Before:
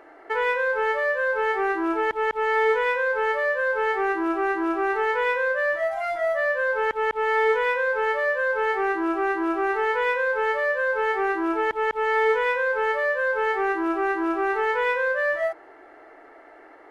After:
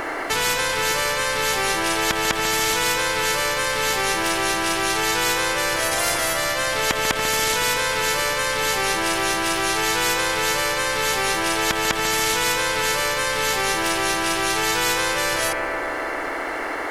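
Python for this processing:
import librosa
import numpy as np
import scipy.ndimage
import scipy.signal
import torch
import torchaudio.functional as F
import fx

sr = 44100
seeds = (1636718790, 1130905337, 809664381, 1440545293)

p1 = fx.bass_treble(x, sr, bass_db=1, treble_db=9)
p2 = p1 + fx.echo_bbd(p1, sr, ms=142, stages=2048, feedback_pct=68, wet_db=-11.0, dry=0)
p3 = fx.spectral_comp(p2, sr, ratio=4.0)
y = p3 * librosa.db_to_amplitude(6.5)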